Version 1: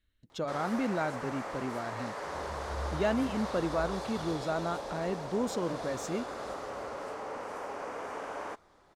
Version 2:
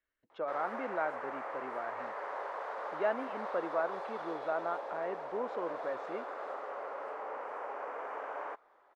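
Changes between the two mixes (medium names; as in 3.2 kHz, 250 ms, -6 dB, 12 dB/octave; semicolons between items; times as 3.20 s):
speech: add low-pass 3.4 kHz 12 dB/octave; second sound: muted; master: add three-band isolator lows -24 dB, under 390 Hz, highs -22 dB, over 2.4 kHz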